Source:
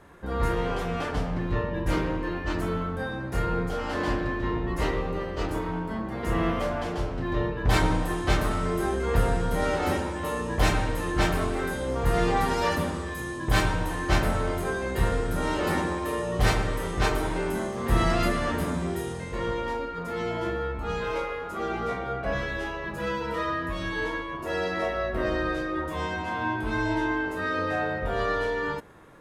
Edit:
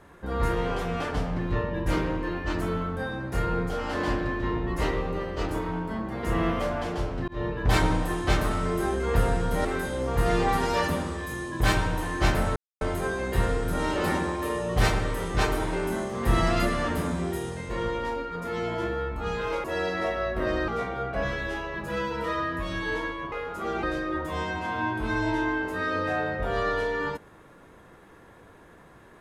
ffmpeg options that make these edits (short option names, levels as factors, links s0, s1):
-filter_complex "[0:a]asplit=8[s0][s1][s2][s3][s4][s5][s6][s7];[s0]atrim=end=7.28,asetpts=PTS-STARTPTS,afade=t=out:st=7.276:d=0.004:c=hsin[s8];[s1]atrim=start=7.28:end=9.652,asetpts=PTS-STARTPTS,afade=t=in:d=0.28:c=qsin[s9];[s2]atrim=start=11.528:end=14.44,asetpts=PTS-STARTPTS,afade=t=out:st=2.908:d=0.004:c=hsin,apad=pad_dur=0.25[s10];[s3]atrim=start=14.44:end=21.272,asetpts=PTS-STARTPTS,afade=t=in:d=0.004:c=hsin[s11];[s4]atrim=start=24.418:end=25.462[s12];[s5]atrim=start=21.778:end=24.422[s13];[s6]atrim=start=21.268:end=21.782[s14];[s7]atrim=start=25.458[s15];[s8][s9]concat=n=2:v=0:a=1[s16];[s10][s11]concat=n=2:v=0:a=1[s17];[s16][s17]acrossfade=d=0.004:c1=hsin:c2=hsin[s18];[s18][s12]acrossfade=d=0.004:c1=hsin:c2=hsin[s19];[s19][s13]acrossfade=d=0.004:c1=hsin:c2=hsin[s20];[s20][s14]acrossfade=d=0.004:c1=hsin:c2=hsin[s21];[s21][s15]acrossfade=d=0.004:c1=hsin:c2=hsin"